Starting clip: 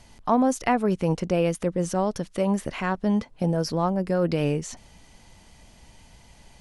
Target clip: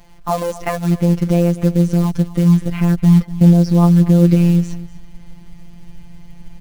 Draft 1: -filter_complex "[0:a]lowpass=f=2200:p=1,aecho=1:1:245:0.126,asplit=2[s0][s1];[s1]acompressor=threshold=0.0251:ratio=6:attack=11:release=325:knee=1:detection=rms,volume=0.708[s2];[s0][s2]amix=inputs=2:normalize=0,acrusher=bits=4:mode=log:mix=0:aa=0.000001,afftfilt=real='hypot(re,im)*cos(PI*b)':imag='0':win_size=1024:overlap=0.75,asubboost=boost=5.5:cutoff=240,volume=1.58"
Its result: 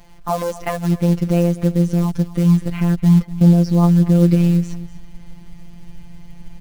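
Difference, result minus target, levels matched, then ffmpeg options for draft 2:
compression: peak gain reduction +9 dB
-filter_complex "[0:a]lowpass=f=2200:p=1,aecho=1:1:245:0.126,asplit=2[s0][s1];[s1]acompressor=threshold=0.0841:ratio=6:attack=11:release=325:knee=1:detection=rms,volume=0.708[s2];[s0][s2]amix=inputs=2:normalize=0,acrusher=bits=4:mode=log:mix=0:aa=0.000001,afftfilt=real='hypot(re,im)*cos(PI*b)':imag='0':win_size=1024:overlap=0.75,asubboost=boost=5.5:cutoff=240,volume=1.58"

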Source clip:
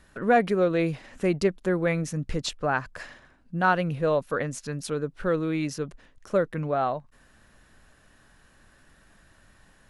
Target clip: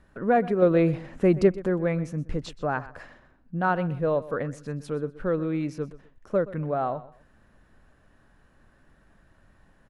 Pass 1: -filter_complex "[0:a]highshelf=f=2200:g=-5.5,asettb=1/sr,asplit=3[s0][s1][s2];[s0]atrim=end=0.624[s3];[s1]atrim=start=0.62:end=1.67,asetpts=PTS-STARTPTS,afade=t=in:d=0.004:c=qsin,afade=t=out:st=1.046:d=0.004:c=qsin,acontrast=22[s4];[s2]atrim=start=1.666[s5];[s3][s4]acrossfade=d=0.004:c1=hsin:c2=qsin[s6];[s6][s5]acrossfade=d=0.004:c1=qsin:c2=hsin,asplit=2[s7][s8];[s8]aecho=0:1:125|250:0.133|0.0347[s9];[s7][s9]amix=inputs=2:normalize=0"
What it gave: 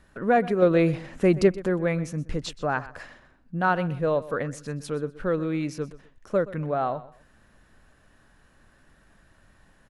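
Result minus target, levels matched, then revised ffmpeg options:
4 kHz band +5.5 dB
-filter_complex "[0:a]highshelf=f=2200:g=-14,asettb=1/sr,asplit=3[s0][s1][s2];[s0]atrim=end=0.624[s3];[s1]atrim=start=0.62:end=1.67,asetpts=PTS-STARTPTS,afade=t=in:d=0.004:c=qsin,afade=t=out:st=1.046:d=0.004:c=qsin,acontrast=22[s4];[s2]atrim=start=1.666[s5];[s3][s4]acrossfade=d=0.004:c1=hsin:c2=qsin[s6];[s6][s5]acrossfade=d=0.004:c1=qsin:c2=hsin,asplit=2[s7][s8];[s8]aecho=0:1:125|250:0.133|0.0347[s9];[s7][s9]amix=inputs=2:normalize=0"

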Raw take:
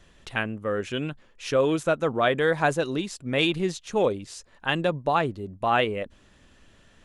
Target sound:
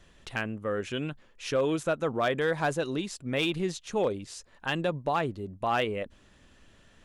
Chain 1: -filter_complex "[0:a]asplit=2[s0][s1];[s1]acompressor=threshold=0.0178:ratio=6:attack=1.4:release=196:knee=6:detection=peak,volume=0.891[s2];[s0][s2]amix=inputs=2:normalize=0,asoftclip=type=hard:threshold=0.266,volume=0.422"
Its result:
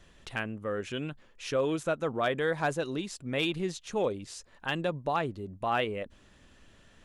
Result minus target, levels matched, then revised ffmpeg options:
compression: peak gain reduction +9.5 dB
-filter_complex "[0:a]asplit=2[s0][s1];[s1]acompressor=threshold=0.0668:ratio=6:attack=1.4:release=196:knee=6:detection=peak,volume=0.891[s2];[s0][s2]amix=inputs=2:normalize=0,asoftclip=type=hard:threshold=0.266,volume=0.422"

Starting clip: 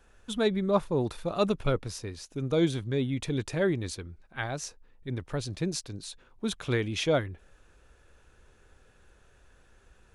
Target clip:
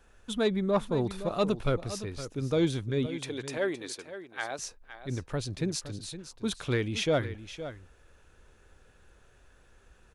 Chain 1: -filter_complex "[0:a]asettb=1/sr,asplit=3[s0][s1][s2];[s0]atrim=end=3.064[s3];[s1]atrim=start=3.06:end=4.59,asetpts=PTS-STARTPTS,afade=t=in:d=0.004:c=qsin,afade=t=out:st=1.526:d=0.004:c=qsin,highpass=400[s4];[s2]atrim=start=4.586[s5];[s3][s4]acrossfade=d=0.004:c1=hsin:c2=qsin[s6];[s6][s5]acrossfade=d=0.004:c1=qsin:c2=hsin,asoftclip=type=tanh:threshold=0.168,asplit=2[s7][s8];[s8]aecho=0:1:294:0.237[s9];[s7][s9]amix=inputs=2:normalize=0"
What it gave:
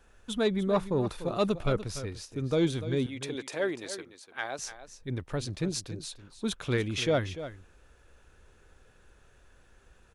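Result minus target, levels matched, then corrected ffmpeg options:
echo 221 ms early
-filter_complex "[0:a]asettb=1/sr,asplit=3[s0][s1][s2];[s0]atrim=end=3.064[s3];[s1]atrim=start=3.06:end=4.59,asetpts=PTS-STARTPTS,afade=t=in:d=0.004:c=qsin,afade=t=out:st=1.526:d=0.004:c=qsin,highpass=400[s4];[s2]atrim=start=4.586[s5];[s3][s4]acrossfade=d=0.004:c1=hsin:c2=qsin[s6];[s6][s5]acrossfade=d=0.004:c1=qsin:c2=hsin,asoftclip=type=tanh:threshold=0.168,asplit=2[s7][s8];[s8]aecho=0:1:515:0.237[s9];[s7][s9]amix=inputs=2:normalize=0"

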